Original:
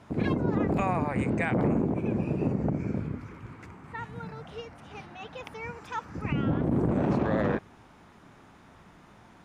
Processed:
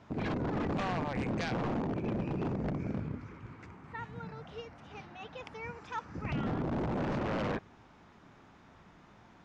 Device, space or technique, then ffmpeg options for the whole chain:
synthesiser wavefolder: -af "aeval=exprs='0.0668*(abs(mod(val(0)/0.0668+3,4)-2)-1)':c=same,lowpass=f=6800:w=0.5412,lowpass=f=6800:w=1.3066,volume=0.631"

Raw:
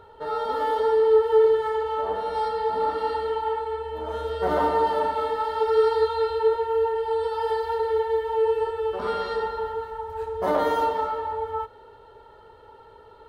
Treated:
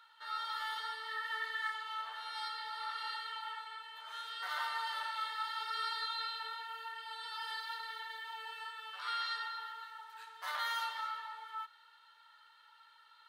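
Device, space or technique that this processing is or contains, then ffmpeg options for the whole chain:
headphones lying on a table: -filter_complex "[0:a]highpass=f=1400:w=0.5412,highpass=f=1400:w=1.3066,equalizer=f=4000:t=o:w=0.6:g=5,asettb=1/sr,asplit=3[s0][s1][s2];[s0]atrim=end=1.084[s3];[s1]atrim=start=1.08:end=1.7,asetpts=PTS-STARTPTS,afade=t=in:d=0.004:c=qsin,afade=t=out:st=0.616:d=0.004:c=qsin,equalizer=f=1900:t=o:w=0.21:g=14.5[s4];[s2]atrim=start=1.696[s5];[s3][s4]acrossfade=d=0.004:c1=hsin:c2=qsin[s6];[s6][s5]acrossfade=d=0.004:c1=qsin:c2=hsin,volume=0.75"

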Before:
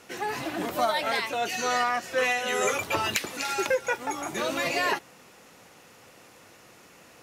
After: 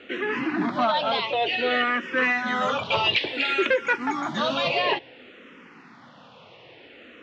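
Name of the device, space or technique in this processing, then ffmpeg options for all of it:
barber-pole phaser into a guitar amplifier: -filter_complex "[0:a]asettb=1/sr,asplit=3[s0][s1][s2];[s0]atrim=end=2.854[s3];[s1]atrim=start=2.85:end=4.68,asetpts=PTS-STARTPTS,afade=t=in:d=0.004:c=qsin,afade=t=out:st=1.826:d=0.004:c=qsin,highshelf=f=4100:g=9[s4];[s2]atrim=start=4.676[s5];[s3][s4]acrossfade=d=0.004:c1=hsin:c2=qsin[s6];[s6][s5]acrossfade=d=0.004:c1=qsin:c2=hsin,asplit=2[s7][s8];[s8]afreqshift=-0.57[s9];[s7][s9]amix=inputs=2:normalize=1,asoftclip=type=tanh:threshold=0.0794,highpass=91,equalizer=f=94:t=q:w=4:g=-5,equalizer=f=250:t=q:w=4:g=6,equalizer=f=750:t=q:w=4:g=-3,equalizer=f=3200:t=q:w=4:g=5,lowpass=f=3600:w=0.5412,lowpass=f=3600:w=1.3066,volume=2.51"

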